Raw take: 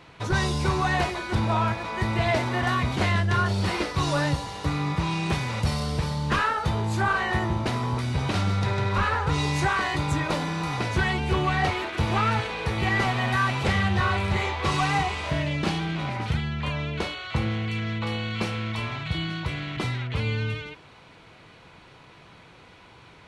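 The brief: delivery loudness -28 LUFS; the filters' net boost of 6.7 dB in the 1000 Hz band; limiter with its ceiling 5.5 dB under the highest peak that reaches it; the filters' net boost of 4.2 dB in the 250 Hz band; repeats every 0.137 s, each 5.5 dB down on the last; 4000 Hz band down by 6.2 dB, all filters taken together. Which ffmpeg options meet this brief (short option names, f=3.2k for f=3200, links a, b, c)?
-af "equalizer=f=250:t=o:g=5.5,equalizer=f=1k:t=o:g=8.5,equalizer=f=4k:t=o:g=-9,alimiter=limit=-13.5dB:level=0:latency=1,aecho=1:1:137|274|411|548|685|822|959:0.531|0.281|0.149|0.079|0.0419|0.0222|0.0118,volume=-6dB"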